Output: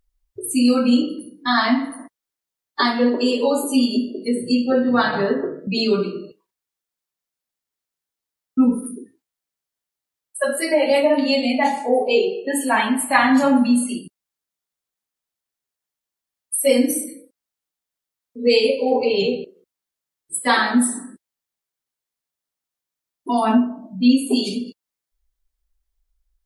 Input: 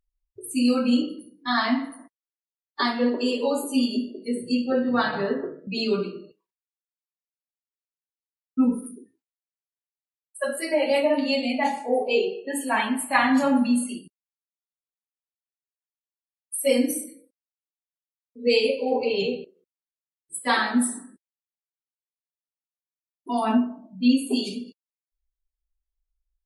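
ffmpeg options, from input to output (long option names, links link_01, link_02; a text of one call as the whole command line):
ffmpeg -i in.wav -filter_complex "[0:a]equalizer=frequency=2600:width=4.6:gain=-2.5,asplit=2[link_01][link_02];[link_02]acompressor=threshold=-32dB:ratio=6,volume=1dB[link_03];[link_01][link_03]amix=inputs=2:normalize=0,volume=3dB" out.wav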